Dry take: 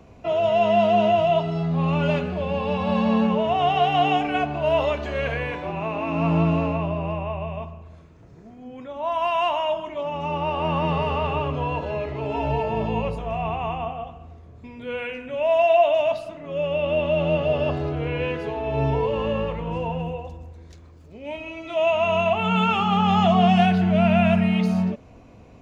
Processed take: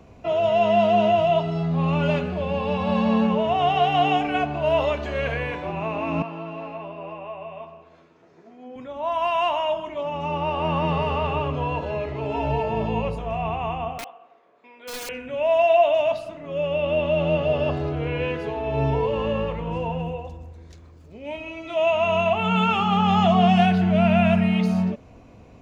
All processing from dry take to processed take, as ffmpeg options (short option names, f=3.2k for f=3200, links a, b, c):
-filter_complex "[0:a]asettb=1/sr,asplit=3[a][b][c];[a]atrim=end=6.224[d];[b]atrim=start=6.22:end=8.76,asetpts=PTS-STARTPTS,afade=t=in:d=0.004:c=qsin,afade=t=out:st=2.536:d=0.004:c=qsin,acompressor=threshold=-35dB:ratio=2:attack=3.2:release=140:knee=1:detection=peak,highpass=340,lowpass=5.4k,asplit=2[e][f];[f]adelay=12,volume=-4.5dB[g];[e][g]amix=inputs=2:normalize=0,atrim=end_sample=112014[h];[c]atrim=start=8.756[i];[d][h]acrossfade=d=0.004:c1=hsin:c2=qsin[j];[j][i]acrossfade=d=0.004:c1=qsin:c2=hsin,asettb=1/sr,asplit=3[k][l][m];[k]atrim=end=13.984[n];[l]atrim=start=13.98:end=15.09,asetpts=PTS-STARTPTS,afade=t=in:d=0.004:c=qsin,afade=t=out:st=1.106:d=0.004:c=qsin,highpass=f=190:w=0.5412,highpass=f=190:w=1.3066,acrossover=split=470 3600:gain=0.0891 1 0.2[o][p][q];[o][p][q]amix=inputs=3:normalize=0,aeval=exprs='(mod(26.6*val(0)+1,2)-1)/26.6':c=same[r];[m]atrim=start=15.086[s];[n][r]acrossfade=d=0.004:c1=hsin:c2=qsin[t];[t][s]acrossfade=d=0.004:c1=qsin:c2=hsin"